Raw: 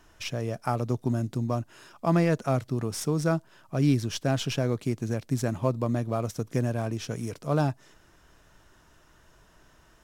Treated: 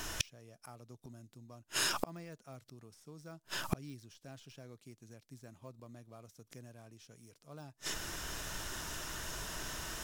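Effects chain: de-esser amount 95%; treble shelf 2.5 kHz +11.5 dB; inverted gate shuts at -28 dBFS, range -39 dB; trim +13 dB

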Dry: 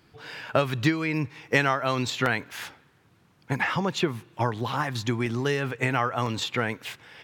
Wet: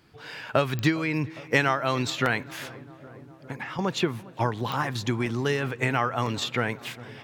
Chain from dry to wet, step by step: 2.47–3.79 s: compression 6:1, threshold -33 dBFS, peak gain reduction 11.5 dB; filtered feedback delay 407 ms, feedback 82%, low-pass 1.3 kHz, level -19 dB; clicks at 0.79/4.72 s, -17 dBFS

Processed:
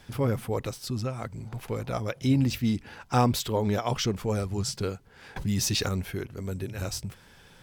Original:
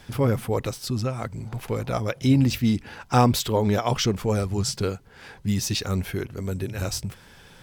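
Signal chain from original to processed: 5.36–5.89 s: level flattener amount 70%; trim -4.5 dB

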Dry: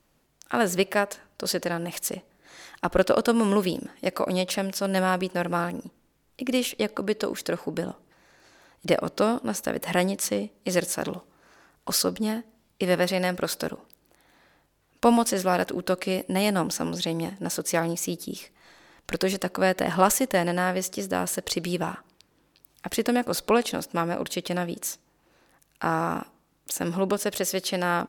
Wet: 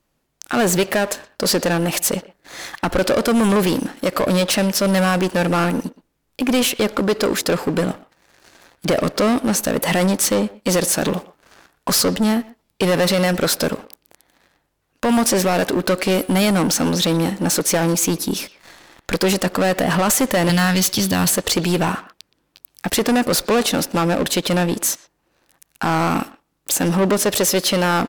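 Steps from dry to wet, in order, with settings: 20.49–21.30 s: ten-band graphic EQ 125 Hz +10 dB, 500 Hz -8 dB, 4 kHz +12 dB, 8 kHz -6 dB, 16 kHz +10 dB; peak limiter -14.5 dBFS, peak gain reduction 9.5 dB; waveshaping leveller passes 3; speakerphone echo 120 ms, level -16 dB; trim +3 dB

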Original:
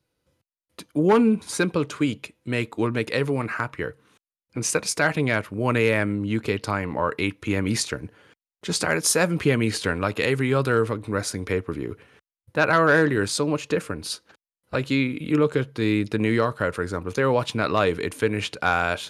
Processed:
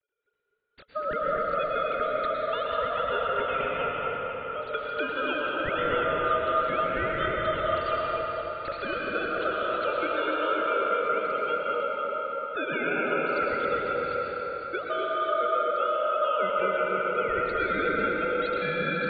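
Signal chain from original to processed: formants replaced by sine waves; dynamic bell 1.4 kHz, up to -5 dB, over -36 dBFS, Q 2.1; compression, threshold -27 dBFS, peak gain reduction 14.5 dB; ring modulator 930 Hz; on a send: echo whose repeats swap between lows and highs 249 ms, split 2.3 kHz, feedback 55%, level -3.5 dB; on the sum: plate-style reverb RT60 4.6 s, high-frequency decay 0.5×, pre-delay 95 ms, DRR -3 dB

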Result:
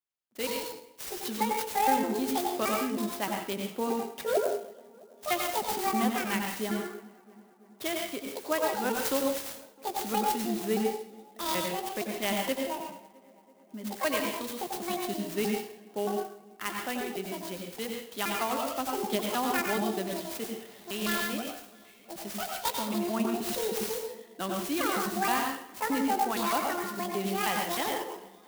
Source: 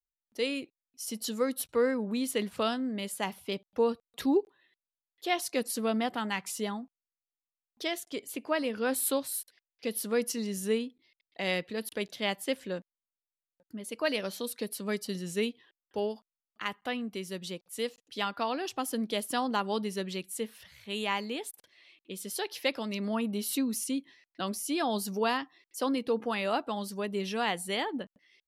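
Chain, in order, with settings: pitch shift switched off and on +9.5 st, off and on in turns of 156 ms; high-pass 140 Hz; band-stop 470 Hz, Q 12; on a send: filtered feedback delay 331 ms, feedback 71%, low-pass 2.4 kHz, level -23.5 dB; on the sum: plate-style reverb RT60 0.52 s, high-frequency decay 1×, pre-delay 80 ms, DRR 1 dB; sampling jitter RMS 0.043 ms

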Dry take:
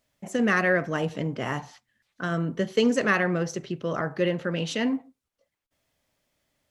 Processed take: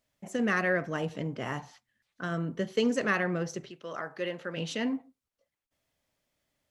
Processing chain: 3.69–4.56 s: high-pass 1 kHz -> 420 Hz 6 dB/octave; trim -5 dB

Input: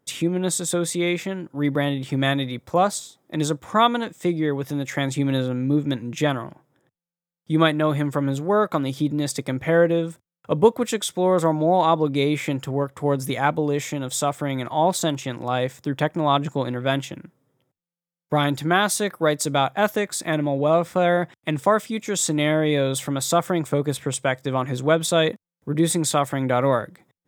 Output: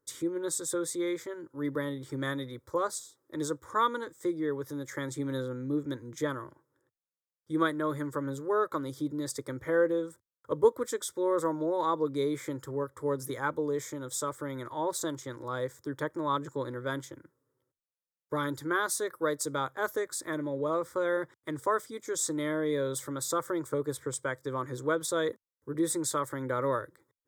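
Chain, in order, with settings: static phaser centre 720 Hz, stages 6; trim -6.5 dB

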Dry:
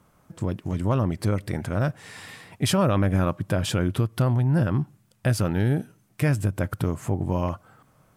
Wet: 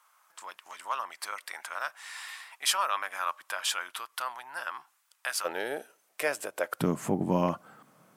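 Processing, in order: Chebyshev high-pass 1 kHz, order 3, from 5.44 s 510 Hz, from 6.79 s 180 Hz; trim +1.5 dB

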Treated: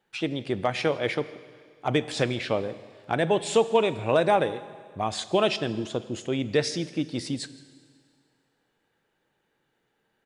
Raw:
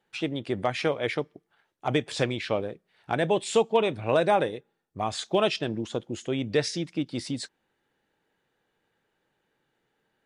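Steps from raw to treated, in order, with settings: delay 162 ms -23.5 dB; Schroeder reverb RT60 2 s, combs from 33 ms, DRR 15 dB; trim +1 dB

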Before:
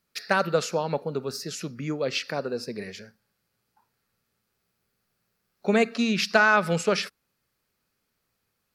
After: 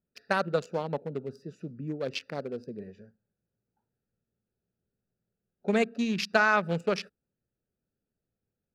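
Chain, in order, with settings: local Wiener filter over 41 samples; trim -3.5 dB

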